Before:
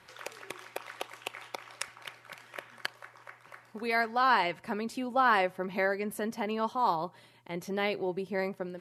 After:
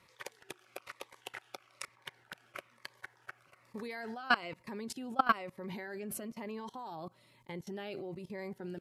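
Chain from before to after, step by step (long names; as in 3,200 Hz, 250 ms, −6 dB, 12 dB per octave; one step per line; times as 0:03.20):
0:01.85–0:02.56: high-shelf EQ 2,400 Hz −5.5 dB
output level in coarse steps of 23 dB
phaser whose notches keep moving one way falling 1.1 Hz
level +5.5 dB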